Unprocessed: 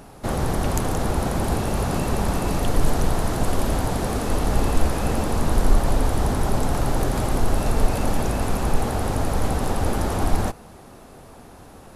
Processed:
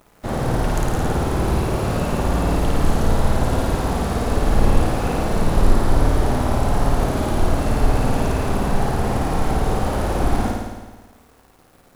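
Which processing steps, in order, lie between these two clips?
high-shelf EQ 5,500 Hz −7.5 dB
background noise white −58 dBFS
dead-zone distortion −41.5 dBFS
flutter between parallel walls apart 9.3 metres, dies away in 1.3 s

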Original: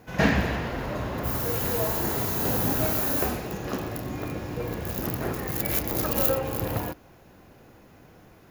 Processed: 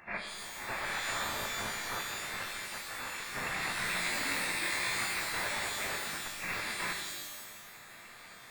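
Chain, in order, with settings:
variable-slope delta modulation 64 kbit/s
0:01.11–0:02.00: Chebyshev high-pass filter 330 Hz, order 6
gate on every frequency bin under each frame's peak −10 dB weak
compressor whose output falls as the input rises −40 dBFS, ratio −0.5
0:02.82–0:03.27: high-frequency loss of the air 270 metres
voice inversion scrambler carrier 2,700 Hz
reverb with rising layers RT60 1.2 s, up +12 semitones, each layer −2 dB, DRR 2.5 dB
level +1 dB

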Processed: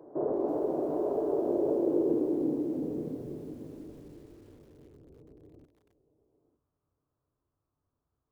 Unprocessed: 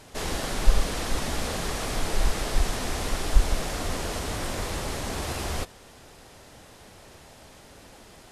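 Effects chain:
dynamic equaliser 830 Hz, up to +6 dB, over −46 dBFS, Q 0.95
in parallel at −2 dB: downward compressor 12 to 1, threshold −32 dBFS, peak gain reduction 23.5 dB
on the sum: low-pass filter sweep 1,300 Hz → 200 Hz, 0:01.27–0:04.49
single-sideband voice off tune −280 Hz 210–2,700 Hz
band-pass filter sweep 540 Hz → 1,600 Hz, 0:05.78–0:06.57
feedback echo with a high-pass in the loop 907 ms, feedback 17%, high-pass 950 Hz, level −9.5 dB
on a send at −8 dB: convolution reverb, pre-delay 3 ms
on the sum: formants moved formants −5 semitones
feedback echo at a low word length 330 ms, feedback 55%, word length 9 bits, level −13 dB

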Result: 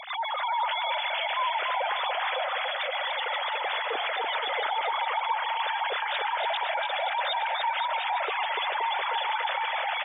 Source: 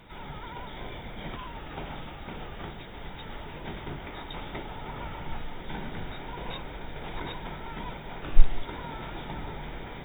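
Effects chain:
three sine waves on the formant tracks
gate on every frequency bin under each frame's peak −15 dB strong
high-shelf EQ 2,100 Hz +10 dB
brickwall limiter −23 dBFS, peak gain reduction 16 dB
bouncing-ball delay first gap 290 ms, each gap 0.8×, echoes 5
on a send at −23 dB: convolution reverb RT60 0.70 s, pre-delay 104 ms
on the sum: level −1 dB

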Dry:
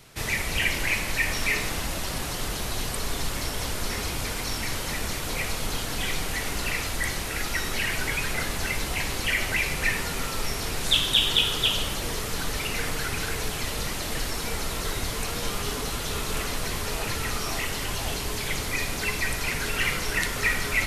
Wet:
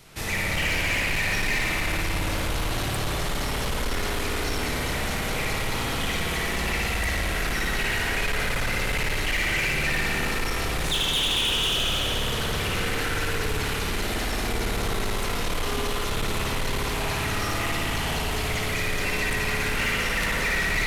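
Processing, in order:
spring reverb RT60 3 s, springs 56 ms, chirp 40 ms, DRR −5 dB
soft clipping −20.5 dBFS, distortion −12 dB

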